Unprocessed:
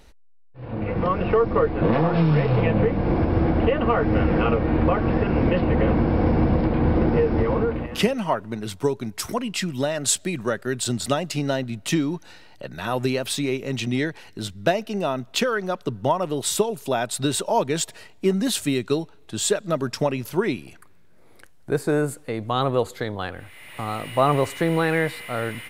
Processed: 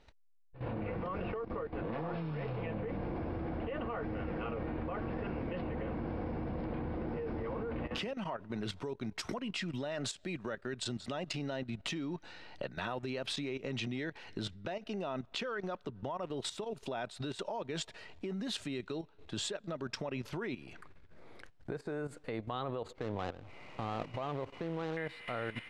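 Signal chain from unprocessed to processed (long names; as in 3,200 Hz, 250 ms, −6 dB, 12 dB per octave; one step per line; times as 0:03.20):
0:22.92–0:24.97: running median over 25 samples
downward compressor 8 to 1, threshold −29 dBFS, peak gain reduction 15.5 dB
low-pass filter 4,400 Hz 12 dB per octave
low-shelf EQ 280 Hz −3.5 dB
output level in coarse steps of 13 dB
level +1.5 dB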